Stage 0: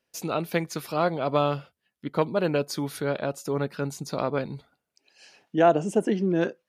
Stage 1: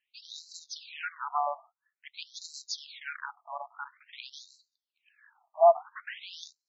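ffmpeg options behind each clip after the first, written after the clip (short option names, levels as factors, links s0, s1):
-af "acrusher=bits=3:mode=log:mix=0:aa=0.000001,equalizer=f=440:w=6.9:g=14.5,afftfilt=real='re*between(b*sr/1024,840*pow(5500/840,0.5+0.5*sin(2*PI*0.49*pts/sr))/1.41,840*pow(5500/840,0.5+0.5*sin(2*PI*0.49*pts/sr))*1.41)':imag='im*between(b*sr/1024,840*pow(5500/840,0.5+0.5*sin(2*PI*0.49*pts/sr))/1.41,840*pow(5500/840,0.5+0.5*sin(2*PI*0.49*pts/sr))*1.41)':win_size=1024:overlap=0.75"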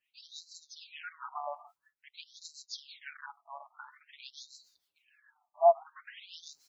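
-filter_complex "[0:a]areverse,acompressor=mode=upward:threshold=0.0126:ratio=2.5,areverse,acrossover=split=1000[s0][s1];[s0]aeval=exprs='val(0)*(1-0.7/2+0.7/2*cos(2*PI*6.7*n/s))':c=same[s2];[s1]aeval=exprs='val(0)*(1-0.7/2-0.7/2*cos(2*PI*6.7*n/s))':c=same[s3];[s2][s3]amix=inputs=2:normalize=0,asplit=2[s4][s5];[s5]adelay=6.2,afreqshift=-1.3[s6];[s4][s6]amix=inputs=2:normalize=1"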